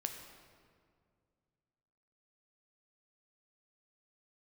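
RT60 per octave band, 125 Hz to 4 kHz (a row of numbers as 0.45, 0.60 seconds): 2.9, 2.6, 2.3, 1.9, 1.6, 1.3 seconds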